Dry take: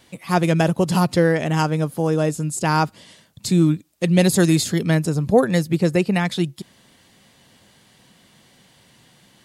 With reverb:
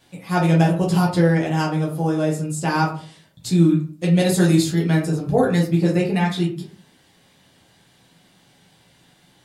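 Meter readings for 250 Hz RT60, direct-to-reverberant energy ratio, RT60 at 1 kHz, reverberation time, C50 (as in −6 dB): 0.55 s, −4.0 dB, 0.40 s, 0.40 s, 7.5 dB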